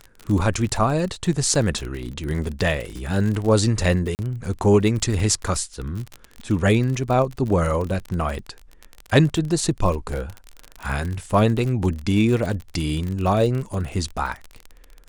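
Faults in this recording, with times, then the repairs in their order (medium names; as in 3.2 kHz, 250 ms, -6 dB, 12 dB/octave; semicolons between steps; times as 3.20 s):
crackle 40 per s -26 dBFS
4.15–4.19 s: dropout 39 ms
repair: de-click; interpolate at 4.15 s, 39 ms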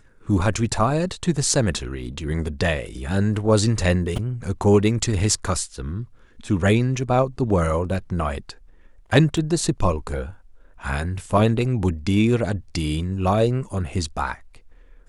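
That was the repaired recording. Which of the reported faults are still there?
nothing left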